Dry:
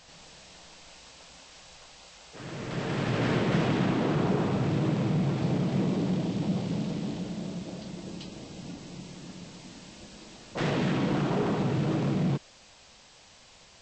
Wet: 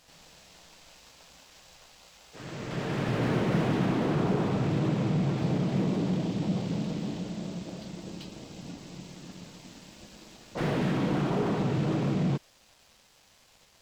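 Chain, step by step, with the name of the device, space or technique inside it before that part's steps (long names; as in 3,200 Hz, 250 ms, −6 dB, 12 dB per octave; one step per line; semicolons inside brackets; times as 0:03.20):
early transistor amplifier (dead-zone distortion −57 dBFS; slew-rate limiting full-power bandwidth 35 Hz)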